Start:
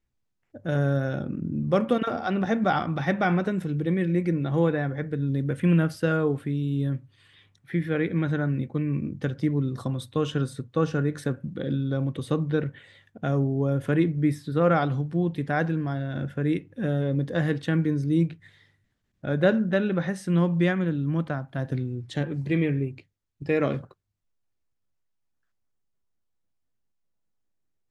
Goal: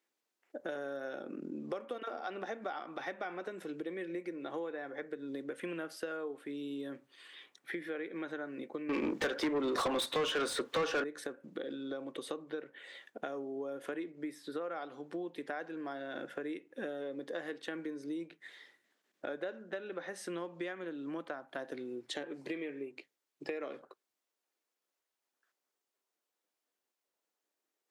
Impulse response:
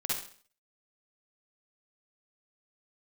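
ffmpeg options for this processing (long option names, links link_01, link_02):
-filter_complex "[0:a]highpass=frequency=330:width=0.5412,highpass=frequency=330:width=1.3066,acompressor=threshold=-41dB:ratio=8,asettb=1/sr,asplit=3[link_01][link_02][link_03];[link_01]atrim=end=8.894[link_04];[link_02]atrim=start=8.89:end=11.04,asetpts=PTS-STARTPTS,afade=type=in:duration=0.004:curve=qsin,afade=type=out:start_time=2.146:duration=0.004:curve=qsin,asplit=2[link_05][link_06];[link_06]highpass=frequency=720:poles=1,volume=27dB,asoftclip=type=tanh:threshold=-27dB[link_07];[link_05][link_07]amix=inputs=2:normalize=0,lowpass=frequency=3500:poles=1,volume=-6dB[link_08];[link_03]atrim=start=11.036[link_09];[link_04][link_08]acrossfade=duration=0.004:curve1=hsin:curve2=qsin[link_10];[link_10][link_09]acrossfade=duration=0.004:curve1=qsin:curve2=hsin,volume=3.5dB"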